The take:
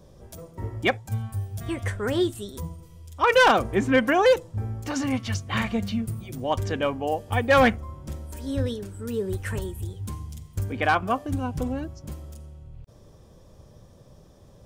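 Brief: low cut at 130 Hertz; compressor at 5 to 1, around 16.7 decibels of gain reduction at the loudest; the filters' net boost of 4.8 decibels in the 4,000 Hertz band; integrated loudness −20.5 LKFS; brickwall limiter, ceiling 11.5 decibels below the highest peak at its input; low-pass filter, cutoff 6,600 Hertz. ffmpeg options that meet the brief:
ffmpeg -i in.wav -af "highpass=130,lowpass=6600,equalizer=frequency=4000:width_type=o:gain=7,acompressor=threshold=-33dB:ratio=5,volume=20dB,alimiter=limit=-10.5dB:level=0:latency=1" out.wav

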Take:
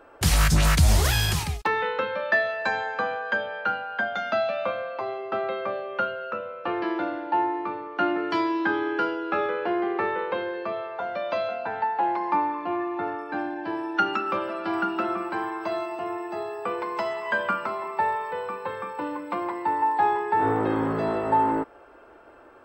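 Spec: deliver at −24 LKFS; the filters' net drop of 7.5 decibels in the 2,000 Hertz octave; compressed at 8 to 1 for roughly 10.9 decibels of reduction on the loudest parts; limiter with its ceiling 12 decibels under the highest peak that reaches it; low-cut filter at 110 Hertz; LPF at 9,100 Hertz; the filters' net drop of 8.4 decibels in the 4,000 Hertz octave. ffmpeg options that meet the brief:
ffmpeg -i in.wav -af "highpass=110,lowpass=9100,equalizer=frequency=2000:width_type=o:gain=-9,equalizer=frequency=4000:width_type=o:gain=-8,acompressor=threshold=-30dB:ratio=8,volume=14.5dB,alimiter=limit=-16.5dB:level=0:latency=1" out.wav

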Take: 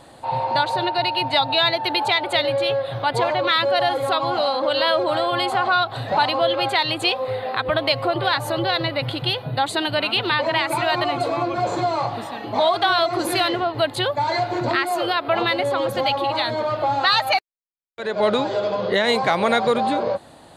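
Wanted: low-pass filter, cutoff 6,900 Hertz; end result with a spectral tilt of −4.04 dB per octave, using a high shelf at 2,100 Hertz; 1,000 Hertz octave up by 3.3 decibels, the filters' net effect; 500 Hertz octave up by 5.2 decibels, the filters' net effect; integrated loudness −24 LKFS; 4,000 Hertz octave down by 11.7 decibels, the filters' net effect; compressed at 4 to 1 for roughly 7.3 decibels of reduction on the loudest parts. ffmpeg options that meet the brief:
ffmpeg -i in.wav -af "lowpass=6900,equalizer=frequency=500:width_type=o:gain=6,equalizer=frequency=1000:width_type=o:gain=4,highshelf=frequency=2100:gain=-8.5,equalizer=frequency=4000:width_type=o:gain=-7,acompressor=threshold=-19dB:ratio=4,volume=-1dB" out.wav

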